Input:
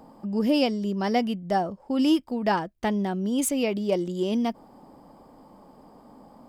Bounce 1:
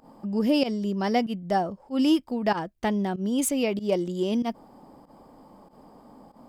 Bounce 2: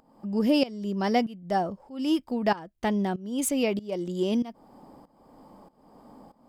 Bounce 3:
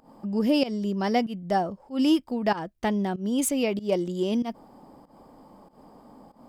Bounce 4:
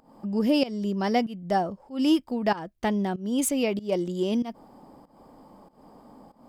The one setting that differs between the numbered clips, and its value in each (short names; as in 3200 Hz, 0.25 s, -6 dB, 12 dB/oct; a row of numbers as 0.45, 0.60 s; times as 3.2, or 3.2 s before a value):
pump, release: 90, 525, 156, 242 ms